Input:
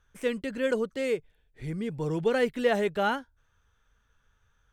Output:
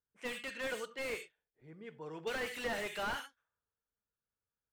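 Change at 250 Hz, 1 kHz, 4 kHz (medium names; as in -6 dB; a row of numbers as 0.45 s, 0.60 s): -17.0 dB, -10.0 dB, -4.0 dB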